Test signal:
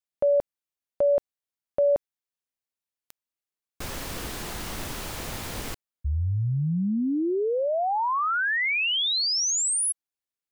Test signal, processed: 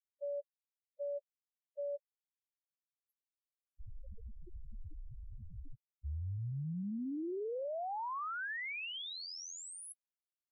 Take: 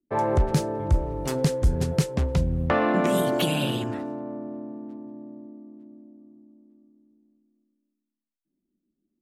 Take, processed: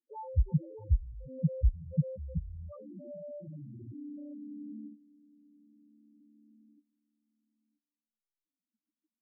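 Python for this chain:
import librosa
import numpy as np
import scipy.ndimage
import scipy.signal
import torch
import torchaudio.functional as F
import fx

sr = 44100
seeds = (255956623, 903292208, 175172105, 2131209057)

y = fx.level_steps(x, sr, step_db=19)
y = fx.spec_topn(y, sr, count=2)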